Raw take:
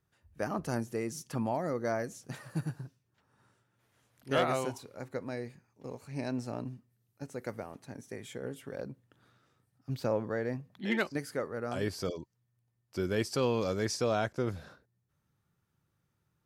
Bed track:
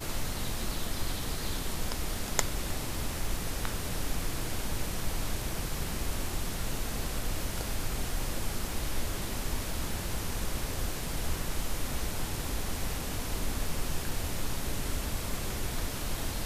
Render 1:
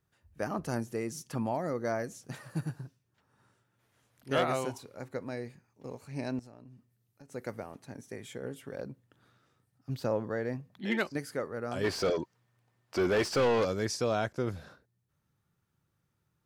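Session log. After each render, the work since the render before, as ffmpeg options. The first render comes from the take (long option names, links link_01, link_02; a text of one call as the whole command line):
ffmpeg -i in.wav -filter_complex "[0:a]asettb=1/sr,asplit=3[link_01][link_02][link_03];[link_01]atrim=end=6.394[link_04];[link_02]atrim=start=6.39:end=7.32,asetpts=PTS-STARTPTS,afade=type=in:duration=0.004:curve=qsin,afade=type=out:start_time=0.926:duration=0.004:curve=qsin,acompressor=threshold=-50dB:ratio=5:attack=3.2:release=140:knee=1:detection=peak[link_05];[link_03]atrim=start=7.316[link_06];[link_04][link_05]acrossfade=duration=0.004:curve1=hsin:curve2=qsin[link_07];[link_07][link_06]acrossfade=duration=0.004:curve1=qsin:curve2=hsin,asettb=1/sr,asplit=3[link_08][link_09][link_10];[link_08]atrim=end=9.964[link_11];[link_09]atrim=start=9.96:end=10.4,asetpts=PTS-STARTPTS,afade=type=in:duration=0.004:curve=qsin,afade=type=out:start_time=0.436:duration=0.004:curve=qsin,bandreject=frequency=2300:width=12[link_12];[link_10]atrim=start=10.396[link_13];[link_11][link_12]acrossfade=duration=0.004:curve1=hsin:curve2=qsin[link_14];[link_14][link_13]acrossfade=duration=0.004:curve1=qsin:curve2=hsin,asplit=3[link_15][link_16][link_17];[link_15]afade=type=out:start_time=11.83:duration=0.02[link_18];[link_16]asplit=2[link_19][link_20];[link_20]highpass=frequency=720:poles=1,volume=24dB,asoftclip=type=tanh:threshold=-18.5dB[link_21];[link_19][link_21]amix=inputs=2:normalize=0,lowpass=frequency=1800:poles=1,volume=-6dB,afade=type=in:start_time=11.83:duration=0.02,afade=type=out:start_time=13.64:duration=0.02[link_22];[link_17]afade=type=in:start_time=13.64:duration=0.02[link_23];[link_18][link_22][link_23]amix=inputs=3:normalize=0" out.wav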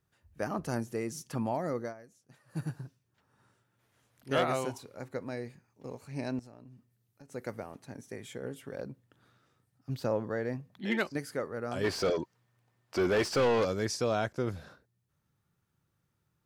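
ffmpeg -i in.wav -filter_complex "[0:a]asplit=3[link_01][link_02][link_03];[link_01]atrim=end=1.94,asetpts=PTS-STARTPTS,afade=type=out:start_time=1.79:duration=0.15:silence=0.133352[link_04];[link_02]atrim=start=1.94:end=2.47,asetpts=PTS-STARTPTS,volume=-17.5dB[link_05];[link_03]atrim=start=2.47,asetpts=PTS-STARTPTS,afade=type=in:duration=0.15:silence=0.133352[link_06];[link_04][link_05][link_06]concat=n=3:v=0:a=1" out.wav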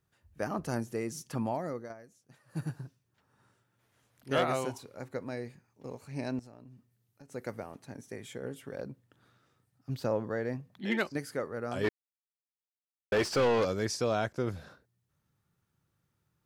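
ffmpeg -i in.wav -filter_complex "[0:a]asplit=4[link_01][link_02][link_03][link_04];[link_01]atrim=end=1.9,asetpts=PTS-STARTPTS,afade=type=out:start_time=1.46:duration=0.44:silence=0.421697[link_05];[link_02]atrim=start=1.9:end=11.89,asetpts=PTS-STARTPTS,afade=type=in:duration=0.004:curve=hsin:silence=0.421697,afade=type=out:start_time=9.986:duration=0.004:curve=hsin[link_06];[link_03]atrim=start=11.89:end=13.12,asetpts=PTS-STARTPTS,volume=0[link_07];[link_04]atrim=start=13.12,asetpts=PTS-STARTPTS,afade=type=in:duration=0.004:curve=hsin[link_08];[link_05][link_06][link_07][link_08]concat=n=4:v=0:a=1" out.wav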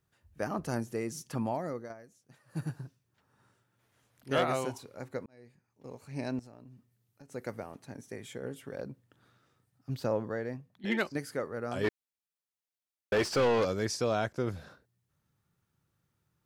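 ffmpeg -i in.wav -filter_complex "[0:a]asplit=3[link_01][link_02][link_03];[link_01]atrim=end=5.26,asetpts=PTS-STARTPTS,afade=type=out:start_time=5.256:duration=0.004:curve=hsin[link_04];[link_02]atrim=start=5.26:end=10.84,asetpts=PTS-STARTPTS,afade=type=in:duration=0.94,afade=type=out:start_time=4.94:duration=0.64:silence=0.354813[link_05];[link_03]atrim=start=10.84,asetpts=PTS-STARTPTS,afade=type=in:duration=0.004:curve=hsin:silence=0.354813[link_06];[link_04][link_05][link_06]concat=n=3:v=0:a=1" out.wav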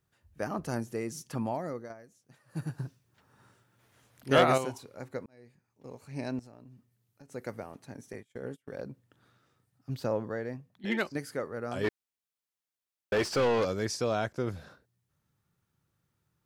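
ffmpeg -i in.wav -filter_complex "[0:a]asettb=1/sr,asplit=3[link_01][link_02][link_03];[link_01]atrim=end=2.784[link_04];[link_02]atrim=start=2.78:end=4.58,asetpts=PTS-STARTPTS,afade=type=in:duration=0.004:curve=qsin,afade=type=out:start_time=1.796:duration=0.004:curve=qsin,acontrast=58[link_05];[link_03]atrim=start=4.576[link_06];[link_04][link_05]acrossfade=duration=0.004:curve1=hsin:curve2=qsin[link_07];[link_07][link_06]acrossfade=duration=0.004:curve1=qsin:curve2=hsin,asettb=1/sr,asplit=3[link_08][link_09][link_10];[link_08]atrim=end=8.134[link_11];[link_09]atrim=start=8.13:end=8.84,asetpts=PTS-STARTPTS,afade=type=in:duration=0.004:curve=qsin,afade=type=out:start_time=0.706:duration=0.004:curve=qsin,agate=range=-29dB:threshold=-45dB:ratio=16:release=100:detection=peak[link_12];[link_10]atrim=start=8.836[link_13];[link_11][link_12]acrossfade=duration=0.004:curve1=hsin:curve2=qsin[link_14];[link_14][link_13]acrossfade=duration=0.004:curve1=qsin:curve2=hsin" out.wav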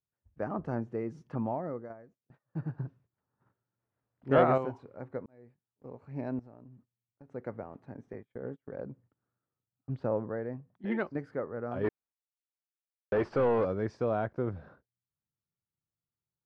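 ffmpeg -i in.wav -af "lowpass=1300,agate=range=-19dB:threshold=-60dB:ratio=16:detection=peak" out.wav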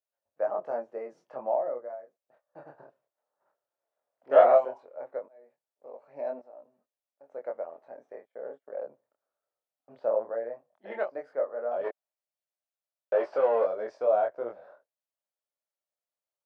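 ffmpeg -i in.wav -af "flanger=delay=20:depth=7.8:speed=0.16,highpass=frequency=600:width_type=q:width=4.9" out.wav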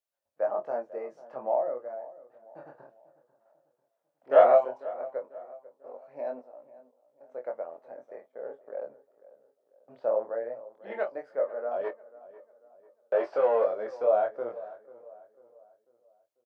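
ffmpeg -i in.wav -filter_complex "[0:a]asplit=2[link_01][link_02];[link_02]adelay=24,volume=-13.5dB[link_03];[link_01][link_03]amix=inputs=2:normalize=0,asplit=2[link_04][link_05];[link_05]adelay=494,lowpass=frequency=1700:poles=1,volume=-18dB,asplit=2[link_06][link_07];[link_07]adelay=494,lowpass=frequency=1700:poles=1,volume=0.44,asplit=2[link_08][link_09];[link_09]adelay=494,lowpass=frequency=1700:poles=1,volume=0.44,asplit=2[link_10][link_11];[link_11]adelay=494,lowpass=frequency=1700:poles=1,volume=0.44[link_12];[link_04][link_06][link_08][link_10][link_12]amix=inputs=5:normalize=0" out.wav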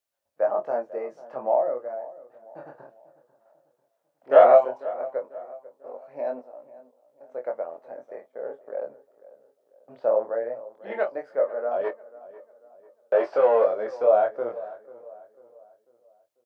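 ffmpeg -i in.wav -af "volume=5dB,alimiter=limit=-3dB:level=0:latency=1" out.wav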